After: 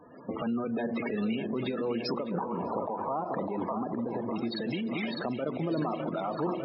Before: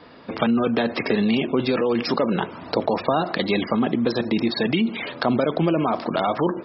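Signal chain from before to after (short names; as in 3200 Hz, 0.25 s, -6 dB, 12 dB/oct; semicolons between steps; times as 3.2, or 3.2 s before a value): loudest bins only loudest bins 32; split-band echo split 480 Hz, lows 0.222 s, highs 0.603 s, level -8.5 dB; compressor 3:1, threshold -26 dBFS, peak gain reduction 8.5 dB; 2.31–4.36 synth low-pass 1000 Hz, resonance Q 3.5; limiter -20.5 dBFS, peak gain reduction 12.5 dB; noise-modulated level, depth 55%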